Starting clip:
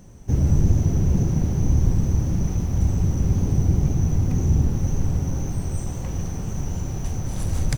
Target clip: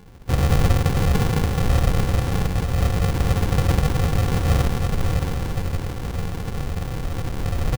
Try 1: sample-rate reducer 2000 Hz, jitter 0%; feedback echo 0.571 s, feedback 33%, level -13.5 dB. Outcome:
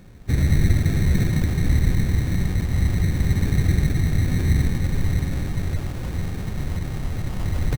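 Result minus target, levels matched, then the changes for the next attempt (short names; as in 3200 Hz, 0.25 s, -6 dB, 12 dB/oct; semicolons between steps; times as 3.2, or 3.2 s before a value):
sample-rate reducer: distortion -9 dB
change: sample-rate reducer 630 Hz, jitter 0%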